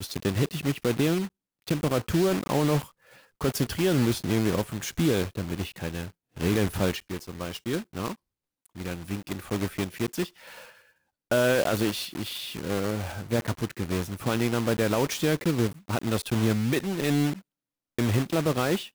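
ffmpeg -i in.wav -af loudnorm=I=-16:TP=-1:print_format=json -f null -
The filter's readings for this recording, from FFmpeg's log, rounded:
"input_i" : "-27.6",
"input_tp" : "-14.7",
"input_lra" : "4.7",
"input_thresh" : "-38.0",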